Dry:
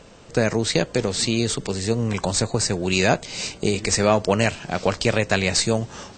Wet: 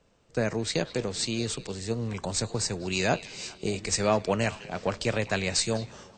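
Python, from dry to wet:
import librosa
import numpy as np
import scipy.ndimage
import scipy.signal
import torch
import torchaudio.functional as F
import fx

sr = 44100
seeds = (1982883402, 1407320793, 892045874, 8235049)

y = fx.echo_stepped(x, sr, ms=205, hz=3100.0, octaves=-1.4, feedback_pct=70, wet_db=-11)
y = fx.band_widen(y, sr, depth_pct=40)
y = F.gain(torch.from_numpy(y), -7.5).numpy()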